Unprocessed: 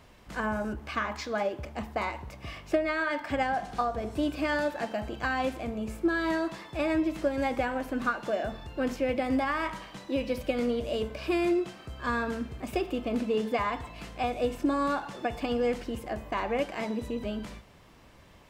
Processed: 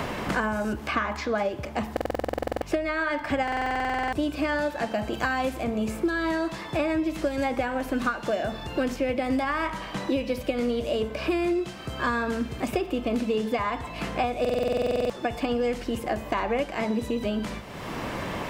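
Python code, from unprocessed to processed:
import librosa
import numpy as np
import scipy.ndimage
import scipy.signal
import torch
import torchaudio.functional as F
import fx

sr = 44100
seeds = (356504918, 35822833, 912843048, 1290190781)

y = fx.high_shelf(x, sr, hz=6600.0, db=10.0, at=(5.13, 5.64))
y = fx.buffer_glitch(y, sr, at_s=(1.92, 3.43, 14.4), block=2048, repeats=14)
y = fx.band_squash(y, sr, depth_pct=100)
y = F.gain(torch.from_numpy(y), 2.0).numpy()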